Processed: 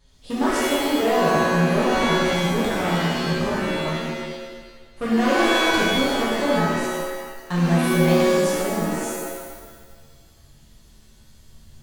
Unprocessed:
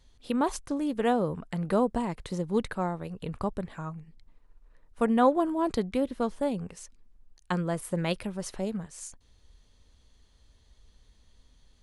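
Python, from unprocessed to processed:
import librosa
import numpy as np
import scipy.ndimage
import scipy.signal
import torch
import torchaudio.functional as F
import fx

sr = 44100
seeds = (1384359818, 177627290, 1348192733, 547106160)

y = np.clip(10.0 ** (24.5 / 20.0) * x, -1.0, 1.0) / 10.0 ** (24.5 / 20.0)
y = fx.wow_flutter(y, sr, seeds[0], rate_hz=2.1, depth_cents=16.0)
y = fx.rev_shimmer(y, sr, seeds[1], rt60_s=1.3, semitones=7, shimmer_db=-2, drr_db=-7.0)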